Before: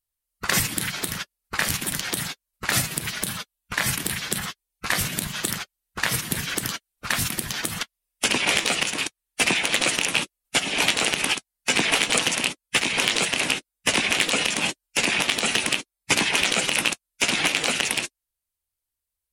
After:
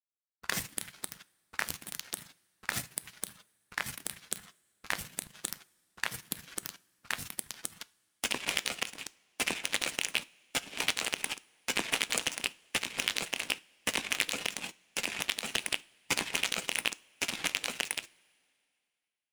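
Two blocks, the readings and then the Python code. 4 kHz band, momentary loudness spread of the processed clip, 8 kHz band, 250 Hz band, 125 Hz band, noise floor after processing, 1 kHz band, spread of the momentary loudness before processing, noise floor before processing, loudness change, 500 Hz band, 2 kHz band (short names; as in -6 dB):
-11.0 dB, 10 LU, -11.0 dB, -14.5 dB, -17.0 dB, -81 dBFS, -12.0 dB, 10 LU, -85 dBFS, -11.0 dB, -13.0 dB, -11.5 dB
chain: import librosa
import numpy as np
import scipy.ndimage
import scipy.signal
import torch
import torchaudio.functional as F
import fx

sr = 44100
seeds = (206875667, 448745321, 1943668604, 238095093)

y = fx.power_curve(x, sr, exponent=2.0)
y = fx.rev_double_slope(y, sr, seeds[0], early_s=0.32, late_s=2.4, knee_db=-19, drr_db=16.5)
y = y * librosa.db_to_amplitude(-5.0)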